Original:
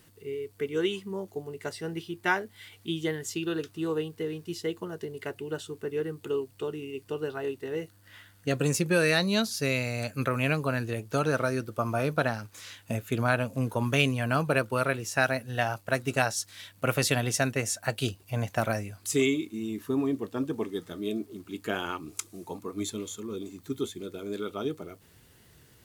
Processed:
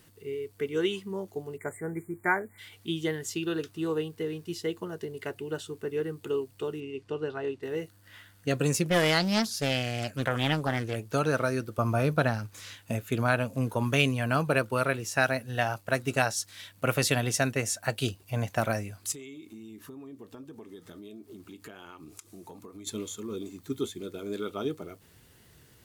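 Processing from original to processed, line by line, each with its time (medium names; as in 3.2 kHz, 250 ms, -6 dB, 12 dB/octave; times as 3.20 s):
1.57–2.58 s: spectral selection erased 2.4–6.8 kHz
6.80–7.63 s: distance through air 85 m
8.84–10.96 s: loudspeaker Doppler distortion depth 0.55 ms
11.78–12.76 s: bass shelf 150 Hz +8.5 dB
19.12–22.87 s: compression 8:1, threshold -42 dBFS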